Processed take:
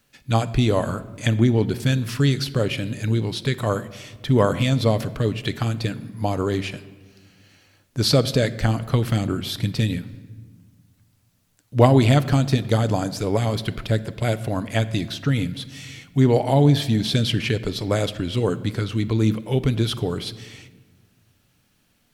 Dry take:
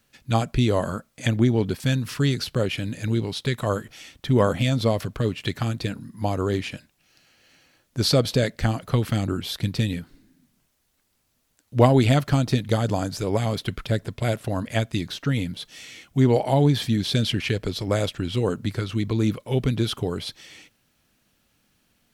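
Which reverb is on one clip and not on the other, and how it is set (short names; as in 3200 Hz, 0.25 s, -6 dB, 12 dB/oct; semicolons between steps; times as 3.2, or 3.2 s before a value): shoebox room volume 1400 m³, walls mixed, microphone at 0.36 m; gain +1.5 dB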